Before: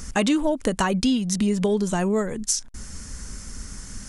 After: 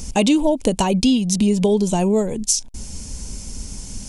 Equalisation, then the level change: high-order bell 1.5 kHz -13 dB 1 oct; +5.0 dB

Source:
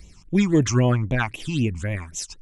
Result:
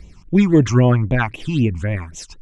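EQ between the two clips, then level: low-pass 2.2 kHz 6 dB/octave; +5.5 dB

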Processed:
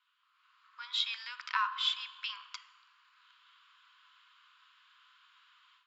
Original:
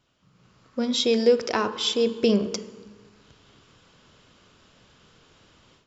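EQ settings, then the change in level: rippled Chebyshev high-pass 990 Hz, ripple 3 dB; distance through air 130 m; peaking EQ 5.7 kHz -12 dB 0.47 oct; 0.0 dB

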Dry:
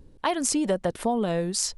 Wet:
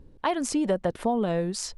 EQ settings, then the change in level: treble shelf 4.5 kHz -10 dB; 0.0 dB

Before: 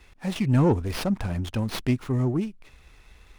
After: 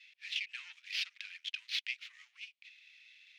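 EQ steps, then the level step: steep high-pass 2.3 kHz 36 dB/octave; distance through air 230 m; +7.0 dB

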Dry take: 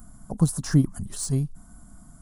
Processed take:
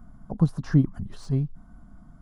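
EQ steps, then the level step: distance through air 290 m; treble shelf 7.8 kHz +6 dB; 0.0 dB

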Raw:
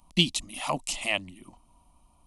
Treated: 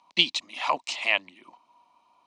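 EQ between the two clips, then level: cabinet simulation 410–6000 Hz, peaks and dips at 440 Hz +4 dB, 980 Hz +7 dB, 1.6 kHz +9 dB, 2.3 kHz +6 dB, 4 kHz +5 dB; 0.0 dB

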